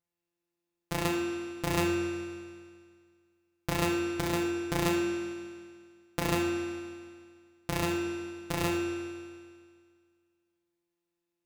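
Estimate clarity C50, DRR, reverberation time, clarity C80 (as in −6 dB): 1.0 dB, −0.5 dB, 1.9 s, 2.5 dB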